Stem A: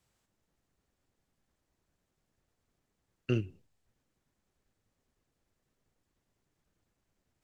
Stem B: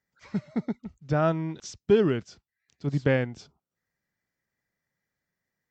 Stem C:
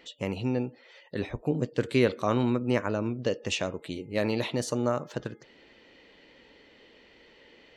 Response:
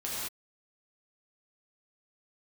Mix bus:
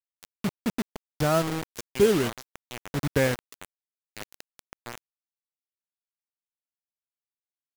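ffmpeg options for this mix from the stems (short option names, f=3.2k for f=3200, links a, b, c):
-filter_complex "[0:a]aeval=exprs='val(0)*gte(abs(val(0)),0.0141)':c=same,adelay=900,volume=-14dB[a];[1:a]asubboost=boost=8:cutoff=53,adelay=100,volume=1dB[b];[2:a]highpass=f=350:p=1,volume=-11dB[c];[a][b][c]amix=inputs=3:normalize=0,acrusher=bits=4:mix=0:aa=0.000001"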